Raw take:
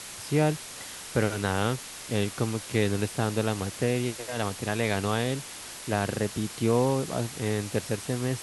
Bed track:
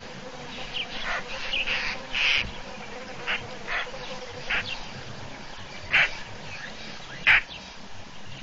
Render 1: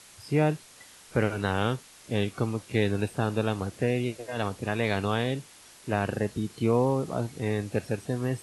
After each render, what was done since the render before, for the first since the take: noise print and reduce 11 dB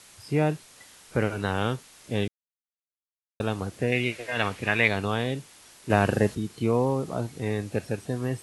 2.28–3.4 mute; 3.92–4.88 bell 2200 Hz +13.5 dB 1.3 oct; 5.9–6.35 gain +6 dB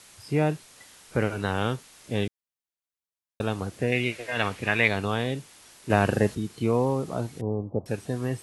7.41–7.86 steep low-pass 1100 Hz 72 dB/oct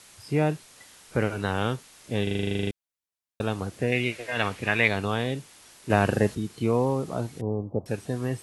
2.23 stutter in place 0.04 s, 12 plays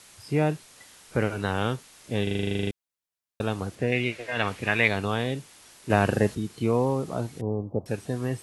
3.75–4.48 high shelf 8100 Hz -8.5 dB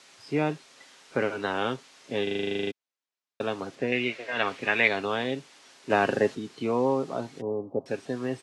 three-band isolator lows -22 dB, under 190 Hz, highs -22 dB, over 7100 Hz; comb 7.4 ms, depth 34%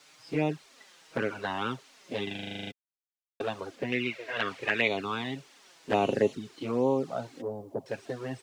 bit-crush 11-bit; envelope flanger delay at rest 7.1 ms, full sweep at -20 dBFS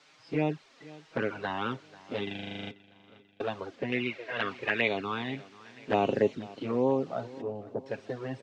air absorption 110 m; feedback echo 0.488 s, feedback 50%, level -20 dB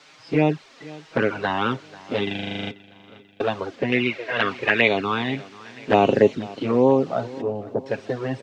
gain +9.5 dB

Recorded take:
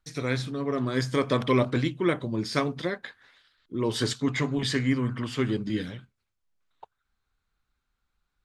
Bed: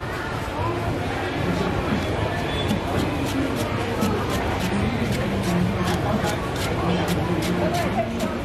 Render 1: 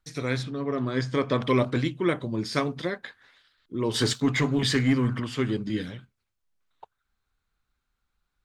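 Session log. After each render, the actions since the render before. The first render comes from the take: 0.43–1.43 air absorption 84 m; 3.94–5.2 sample leveller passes 1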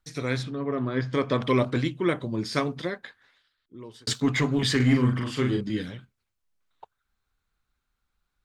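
0.55–1.13 LPF 3000 Hz; 2.73–4.07 fade out; 4.76–5.61 doubler 40 ms -4 dB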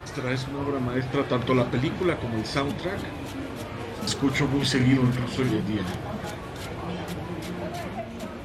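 add bed -10.5 dB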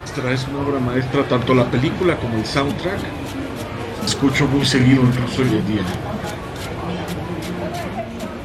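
gain +7.5 dB

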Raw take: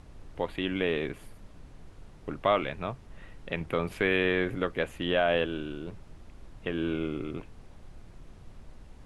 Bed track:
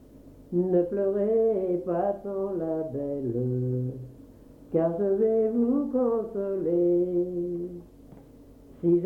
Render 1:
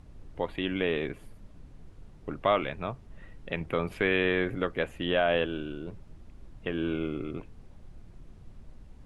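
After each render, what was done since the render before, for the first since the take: denoiser 6 dB, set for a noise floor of -51 dBFS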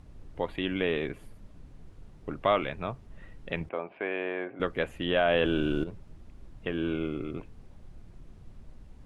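3.69–4.6 speaker cabinet 430–2200 Hz, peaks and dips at 460 Hz -5 dB, 690 Hz +4 dB, 1300 Hz -8 dB, 1900 Hz -9 dB; 5.16–5.84 fast leveller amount 70%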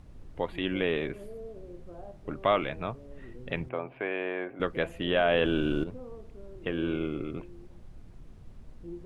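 add bed track -20 dB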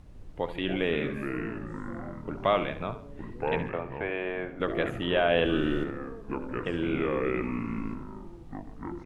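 feedback echo 70 ms, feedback 34%, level -12 dB; echoes that change speed 0.15 s, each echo -5 st, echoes 3, each echo -6 dB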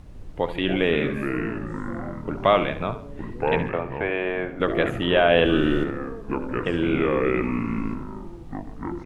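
gain +6.5 dB

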